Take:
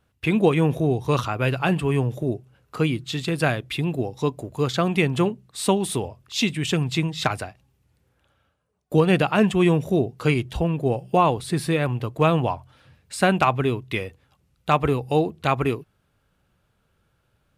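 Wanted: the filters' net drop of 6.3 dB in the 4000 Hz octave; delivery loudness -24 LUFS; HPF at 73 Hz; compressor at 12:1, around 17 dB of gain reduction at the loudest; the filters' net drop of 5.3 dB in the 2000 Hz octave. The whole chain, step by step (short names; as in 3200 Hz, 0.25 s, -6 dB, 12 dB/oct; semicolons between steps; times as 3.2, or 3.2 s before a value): HPF 73 Hz; bell 2000 Hz -5.5 dB; bell 4000 Hz -6 dB; compressor 12:1, threshold -31 dBFS; gain +13 dB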